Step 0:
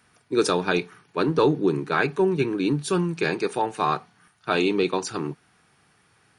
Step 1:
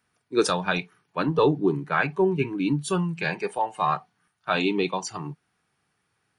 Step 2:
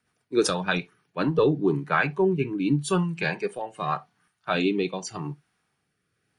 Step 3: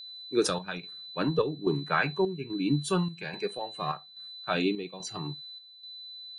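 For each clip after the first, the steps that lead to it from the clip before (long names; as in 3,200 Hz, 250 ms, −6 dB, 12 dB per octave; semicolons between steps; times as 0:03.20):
noise reduction from a noise print of the clip's start 12 dB
rotating-speaker cabinet horn 8 Hz, later 0.85 Hz, at 0:00.64; on a send at −21.5 dB: convolution reverb, pre-delay 3 ms; on the sum: level +2 dB
steady tone 4,000 Hz −38 dBFS; square-wave tremolo 1.2 Hz, depth 60%, duty 70%; level −3.5 dB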